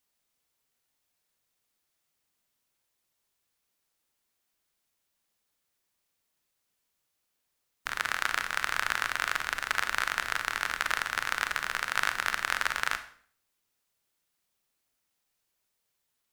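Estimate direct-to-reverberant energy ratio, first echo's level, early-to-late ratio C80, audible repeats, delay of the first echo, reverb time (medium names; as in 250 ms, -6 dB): 9.0 dB, no echo, 15.5 dB, no echo, no echo, 0.50 s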